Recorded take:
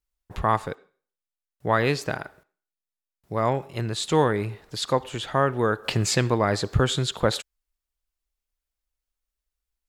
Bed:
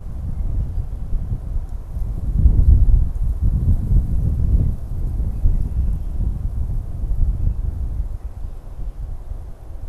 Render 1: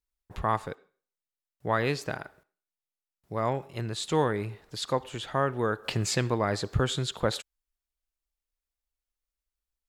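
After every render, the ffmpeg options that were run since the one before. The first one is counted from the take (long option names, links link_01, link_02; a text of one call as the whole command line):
ffmpeg -i in.wav -af "volume=-5dB" out.wav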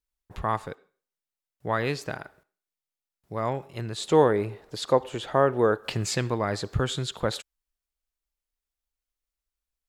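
ffmpeg -i in.wav -filter_complex "[0:a]asettb=1/sr,asplit=3[link_01][link_02][link_03];[link_01]atrim=end=3.984[link_04];[link_02]atrim=start=3.98:end=5.78,asetpts=PTS-STARTPTS,afade=type=in:duration=0.004:curve=qsin,afade=type=out:start_time=1.796:duration=0.004:curve=qsin,equalizer=frequency=500:width_type=o:width=2:gain=8[link_05];[link_03]atrim=start=5.776[link_06];[link_04][link_05]acrossfade=duration=0.004:curve1=hsin:curve2=qsin[link_07];[link_07][link_06]acrossfade=duration=0.004:curve1=qsin:curve2=hsin" out.wav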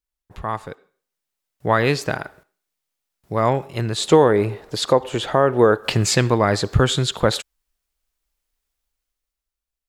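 ffmpeg -i in.wav -af "alimiter=limit=-13dB:level=0:latency=1:release=233,dynaudnorm=framelen=150:gausssize=13:maxgain=11dB" out.wav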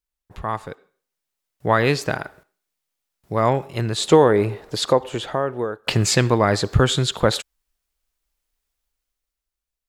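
ffmpeg -i in.wav -filter_complex "[0:a]asplit=2[link_01][link_02];[link_01]atrim=end=5.87,asetpts=PTS-STARTPTS,afade=type=out:start_time=4.82:duration=1.05:silence=0.0794328[link_03];[link_02]atrim=start=5.87,asetpts=PTS-STARTPTS,afade=type=in:duration=0.004:curve=hsin:silence=0.0794328[link_04];[link_03][link_04]concat=n=2:v=0:a=1" out.wav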